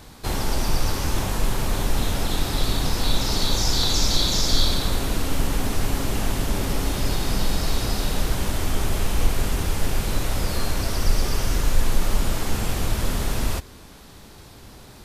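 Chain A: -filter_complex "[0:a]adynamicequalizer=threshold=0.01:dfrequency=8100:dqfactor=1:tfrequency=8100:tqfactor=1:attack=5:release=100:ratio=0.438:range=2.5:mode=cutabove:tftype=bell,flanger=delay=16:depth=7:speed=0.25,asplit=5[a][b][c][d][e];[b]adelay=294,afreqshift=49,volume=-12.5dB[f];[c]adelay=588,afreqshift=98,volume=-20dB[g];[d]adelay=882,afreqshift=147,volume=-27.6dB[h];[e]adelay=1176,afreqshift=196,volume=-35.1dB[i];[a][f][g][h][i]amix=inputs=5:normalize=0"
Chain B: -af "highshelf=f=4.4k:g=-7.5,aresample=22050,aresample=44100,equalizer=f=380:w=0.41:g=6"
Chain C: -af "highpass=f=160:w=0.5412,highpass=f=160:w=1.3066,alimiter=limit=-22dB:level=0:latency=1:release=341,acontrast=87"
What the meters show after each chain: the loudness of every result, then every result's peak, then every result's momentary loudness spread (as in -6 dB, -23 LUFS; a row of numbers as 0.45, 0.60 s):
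-28.0, -24.0, -24.5 LUFS; -9.0, -5.5, -15.0 dBFS; 6, 5, 4 LU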